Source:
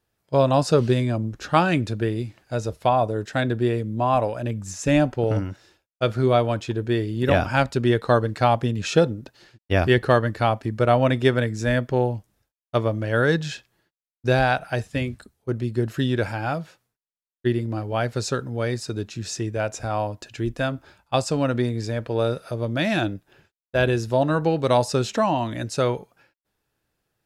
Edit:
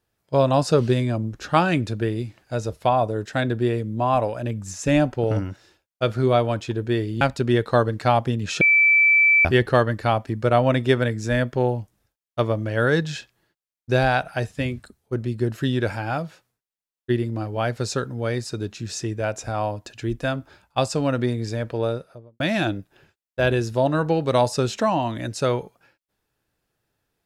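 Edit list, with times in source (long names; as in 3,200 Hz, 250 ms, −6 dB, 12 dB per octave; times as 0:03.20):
0:07.21–0:07.57: remove
0:08.97–0:09.81: beep over 2,320 Hz −12.5 dBFS
0:22.04–0:22.76: fade out and dull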